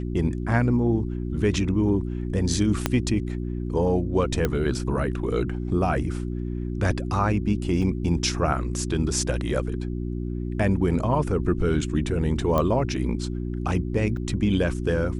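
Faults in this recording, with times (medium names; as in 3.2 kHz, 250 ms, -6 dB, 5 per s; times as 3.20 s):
hum 60 Hz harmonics 6 -29 dBFS
2.86 s: pop -6 dBFS
4.45 s: pop -10 dBFS
7.82 s: dropout 3.9 ms
12.58 s: pop -11 dBFS
14.17 s: dropout 2.1 ms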